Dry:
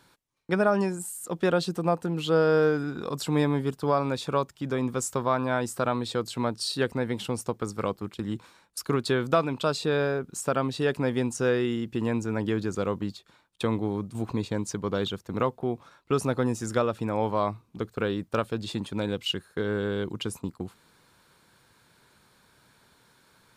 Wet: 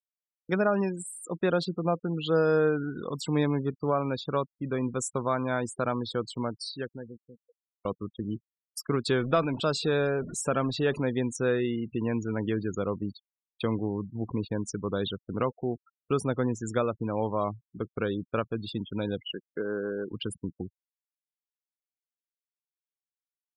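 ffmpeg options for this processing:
-filter_complex "[0:a]asettb=1/sr,asplit=3[a][b][c];[a]atrim=end=9.064[d];[b]atrim=start=9.06:end=10.99,asetpts=PTS-STARTPTS,afade=t=in:d=0.004:c=qsin,afade=t=out:st=1.926:d=0.004:c=qsin,aeval=exprs='val(0)+0.5*0.0211*sgn(val(0))':c=same[e];[c]atrim=start=10.986[f];[d][e]acrossfade=d=0.004:c1=hsin:c2=qsin[g];[g][f]acrossfade=d=0.004:c1=qsin:c2=hsin,asettb=1/sr,asplit=3[h][i][j];[h]atrim=end=19.234[k];[i]atrim=start=19.23:end=20.12,asetpts=PTS-STARTPTS,afade=t=in:d=0.004:c=qsin,afade=t=out:st=0.886:d=0.004:c=qsin,highpass=240,lowpass=2.1k[l];[j]atrim=start=20.116[m];[k][l]acrossfade=d=0.004:c1=hsin:c2=qsin[n];[n][m]acrossfade=d=0.004:c1=qsin:c2=hsin,asplit=2[o][p];[o]atrim=end=7.85,asetpts=PTS-STARTPTS,afade=t=out:st=6.3:d=1.55:c=qua[q];[p]atrim=start=7.85,asetpts=PTS-STARTPTS,afade=t=in:d=0.004:c=hsin[r];[q][r]concat=n=2:v=0:a=1,afftfilt=real='re*gte(hypot(re,im),0.02)':imag='im*gte(hypot(re,im),0.02)':win_size=1024:overlap=0.75,equalizer=f=890:w=2:g=-3,volume=-1.5dB"

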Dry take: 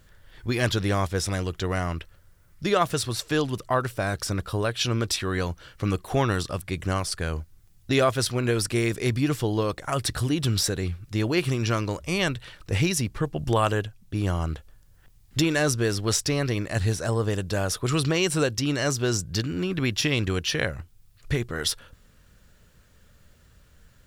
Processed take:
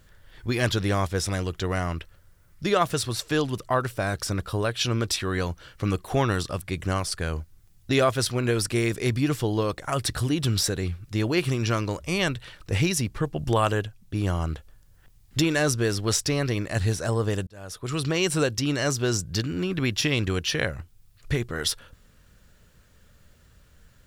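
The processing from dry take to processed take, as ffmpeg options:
-filter_complex "[0:a]asplit=2[a][b];[a]atrim=end=17.47,asetpts=PTS-STARTPTS,afade=t=out:st=17.466:d=0.004:c=hsin[c];[b]atrim=start=17.47,asetpts=PTS-STARTPTS,afade=t=in:d=0.79[d];[c][d]concat=n=2:v=0:a=1"

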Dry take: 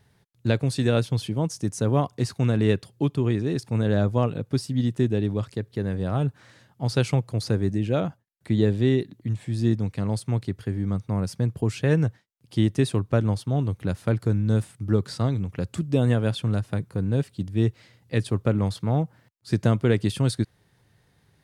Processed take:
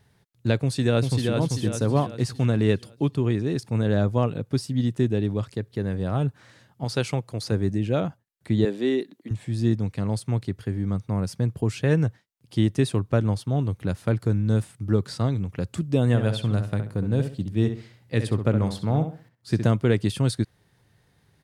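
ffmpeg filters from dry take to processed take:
-filter_complex "[0:a]asplit=2[a][b];[b]afade=t=in:st=0.63:d=0.01,afade=t=out:st=1.36:d=0.01,aecho=0:1:390|780|1170|1560|1950|2340:0.668344|0.300755|0.13534|0.0609028|0.0274063|0.0123328[c];[a][c]amix=inputs=2:normalize=0,asettb=1/sr,asplit=3[d][e][f];[d]atrim=end=6.844[g];[e]atrim=start=6.84:end=7.52,asetpts=PTS-STARTPTS,afade=t=in:d=0.004:c=qsin,afade=t=out:st=0.676:d=0.004:c=qsin,lowshelf=f=190:g=-7.5[h];[f]atrim=start=7.516[i];[g][h]acrossfade=d=0.004:c1=hsin:c2=qsin[j];[j][i]acrossfade=d=0.004:c1=qsin:c2=hsin,asettb=1/sr,asplit=3[k][l][m];[k]atrim=end=8.654[n];[l]atrim=start=8.65:end=9.31,asetpts=PTS-STARTPTS,afade=t=in:d=0.004:c=qsin,afade=t=out:st=0.656:d=0.004:c=qsin,highpass=f=240:w=0.5412,highpass=f=240:w=1.3066[o];[m]atrim=start=9.306[p];[n][o]acrossfade=d=0.004:c1=hsin:c2=qsin[q];[q][p]acrossfade=d=0.004:c1=qsin:c2=hsin,asplit=3[r][s][t];[r]afade=t=out:st=16.13:d=0.02[u];[s]asplit=2[v][w];[w]adelay=66,lowpass=f=3.9k:p=1,volume=-8dB,asplit=2[x][y];[y]adelay=66,lowpass=f=3.9k:p=1,volume=0.3,asplit=2[z][aa];[aa]adelay=66,lowpass=f=3.9k:p=1,volume=0.3,asplit=2[ab][ac];[ac]adelay=66,lowpass=f=3.9k:p=1,volume=0.3[ad];[v][x][z][ab][ad]amix=inputs=5:normalize=0,afade=t=in:st=16.13:d=0.02,afade=t=out:st=19.7:d=0.02[ae];[t]afade=t=in:st=19.7:d=0.02[af];[u][ae][af]amix=inputs=3:normalize=0"

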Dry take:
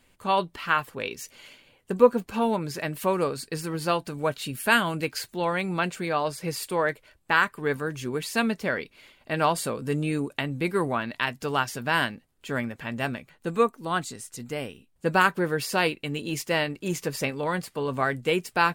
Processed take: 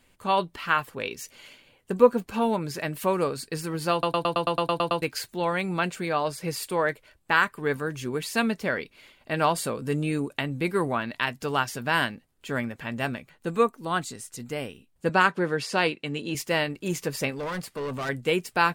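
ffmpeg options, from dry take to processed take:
-filter_complex "[0:a]asettb=1/sr,asplit=3[a][b][c];[a]atrim=end=15.094[d];[b]atrim=start=15.09:end=16.35,asetpts=PTS-STARTPTS,afade=t=in:d=0.004:c=qsin,afade=t=out:st=1.256:d=0.004:c=qsin,highpass=120,lowpass=7.2k[e];[c]atrim=start=16.346[f];[d][e]acrossfade=d=0.004:c1=hsin:c2=qsin[g];[g][f]acrossfade=d=0.004:c1=qsin:c2=hsin,asettb=1/sr,asplit=3[h][i][j];[h]atrim=end=17.324[k];[i]atrim=start=17.32:end=18.09,asetpts=PTS-STARTPTS,afade=t=in:d=0.004:c=qsin,afade=t=out:st=0.766:d=0.004:c=qsin,volume=28.5dB,asoftclip=hard,volume=-28.5dB[l];[j]atrim=start=18.086[m];[k][l]acrossfade=d=0.004:c1=hsin:c2=qsin[n];[n][m]acrossfade=d=0.004:c1=qsin:c2=hsin,asplit=11[o][p][q][r][s][t][u][v][w][x][y];[o]atrim=end=4.032[z];[p]atrim=start=3.918:end=4.032[aa];[q]atrim=start=3.918:end=4.032[ab];[r]atrim=start=3.918:end=4.032[ac];[s]atrim=start=3.918:end=4.032[ad];[t]atrim=start=3.918:end=4.032[ae];[u]atrim=start=3.918:end=4.032[af];[v]atrim=start=3.918:end=4.032[ag];[w]atrim=start=3.918:end=4.032[ah];[x]atrim=start=3.918:end=4.032[ai];[y]atrim=start=5.018[aj];[z][aa]acrossfade=d=0.004:c1=hsin:c2=hsin[ak];[ak][ab]acrossfade=d=0.004:c1=hsin:c2=hsin[al];[al][ac]acrossfade=d=0.004:c1=hsin:c2=hsin[am];[am][ad]acrossfade=d=0.004:c1=hsin:c2=hsin[an];[an][ae]acrossfade=d=0.004:c1=hsin:c2=hsin[ao];[ao][af]acrossfade=d=0.004:c1=hsin:c2=hsin[ap];[ap][ag]acrossfade=d=0.004:c1=hsin:c2=hsin[aq];[aq][ah]acrossfade=d=0.004:c1=hsin:c2=hsin[ar];[ar][ai]acrossfade=d=0.004:c1=hsin:c2=hsin[as];[as][aj]acrossfade=d=0.004:c1=hsin:c2=hsin"

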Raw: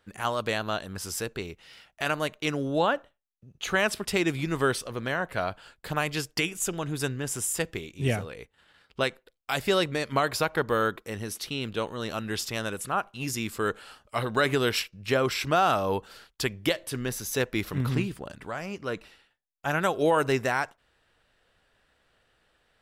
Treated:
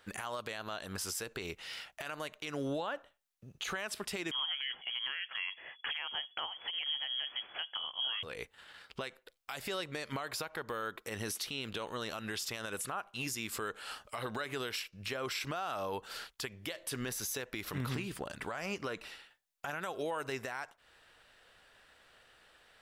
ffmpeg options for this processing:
-filter_complex "[0:a]asettb=1/sr,asplit=3[a][b][c];[a]atrim=end=4.314[d];[b]atrim=start=4.31:end=8.23,asetpts=PTS-STARTPTS,afade=t=in:d=0.004:c=qsin,afade=t=out:st=3.916:d=0.004:c=qsin,lowpass=f=2.9k:t=q:w=0.5098,lowpass=f=2.9k:t=q:w=0.6013,lowpass=f=2.9k:t=q:w=0.9,lowpass=f=2.9k:t=q:w=2.563,afreqshift=-3400[e];[c]atrim=start=8.226[f];[d][e]acrossfade=d=0.004:c1=hsin:c2=qsin[g];[g][f]acrossfade=d=0.004:c1=qsin:c2=hsin,lowshelf=f=420:g=-9.5,acompressor=threshold=-39dB:ratio=5,alimiter=level_in=10.5dB:limit=-24dB:level=0:latency=1:release=67,volume=-10.5dB,volume=7dB"

